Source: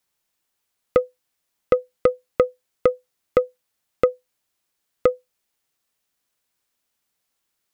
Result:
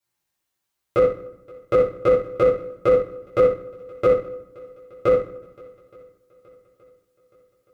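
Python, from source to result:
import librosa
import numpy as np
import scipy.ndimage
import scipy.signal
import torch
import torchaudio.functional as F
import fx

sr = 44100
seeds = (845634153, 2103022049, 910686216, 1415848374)

y = fx.echo_swing(x, sr, ms=872, ratio=1.5, feedback_pct=45, wet_db=-21)
y = fx.rev_fdn(y, sr, rt60_s=0.82, lf_ratio=1.35, hf_ratio=0.75, size_ms=51.0, drr_db=-10.0)
y = fx.upward_expand(y, sr, threshold_db=-18.0, expansion=1.5)
y = y * librosa.db_to_amplitude(-6.0)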